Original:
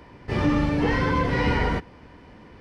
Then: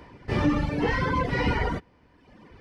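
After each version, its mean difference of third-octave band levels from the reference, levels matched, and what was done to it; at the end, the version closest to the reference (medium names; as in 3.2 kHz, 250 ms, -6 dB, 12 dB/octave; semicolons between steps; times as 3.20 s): 2.5 dB: reverb removal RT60 1.2 s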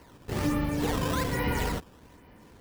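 4.5 dB: decimation with a swept rate 12×, swing 160% 1.2 Hz; trim -6 dB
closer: first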